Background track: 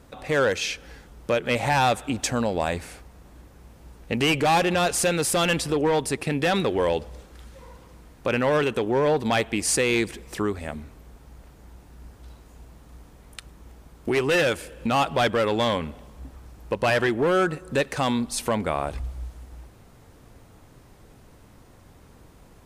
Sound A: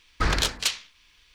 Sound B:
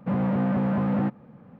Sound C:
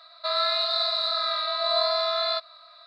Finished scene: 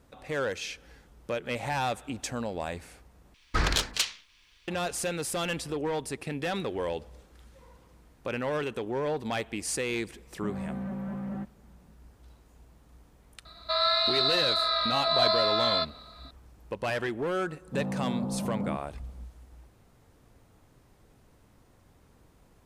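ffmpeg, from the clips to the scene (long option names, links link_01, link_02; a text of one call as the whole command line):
ffmpeg -i bed.wav -i cue0.wav -i cue1.wav -i cue2.wav -filter_complex "[2:a]asplit=2[link_01][link_02];[0:a]volume=-9dB[link_03];[link_01]aecho=1:1:5.2:0.77[link_04];[link_02]lowpass=frequency=1100:width=0.5412,lowpass=frequency=1100:width=1.3066[link_05];[link_03]asplit=2[link_06][link_07];[link_06]atrim=end=3.344[link_08];[1:a]atrim=end=1.34,asetpts=PTS-STARTPTS,volume=-2.5dB[link_09];[link_07]atrim=start=4.676[link_10];[link_04]atrim=end=1.59,asetpts=PTS-STARTPTS,volume=-15dB,afade=type=in:duration=0.004:curve=hsin,afade=type=out:start_time=1.586:duration=0.004:curve=hsin,adelay=10350[link_11];[3:a]atrim=end=2.86,asetpts=PTS-STARTPTS,volume=-0.5dB,afade=type=in:duration=0.004:curve=hsin,afade=type=out:start_time=2.856:duration=0.004:curve=hsin,adelay=13450[link_12];[link_05]atrim=end=1.59,asetpts=PTS-STARTPTS,volume=-8.5dB,afade=type=in:duration=0.004:curve=hsin,afade=type=out:start_time=1.586:duration=0.004:curve=hsin,adelay=17670[link_13];[link_08][link_09]acrossfade=duration=0.004:curve1=hsin:curve2=hsin[link_14];[link_14][link_10]acrossfade=duration=0.004:curve1=hsin:curve2=hsin[link_15];[link_15][link_11][link_12][link_13]amix=inputs=4:normalize=0" out.wav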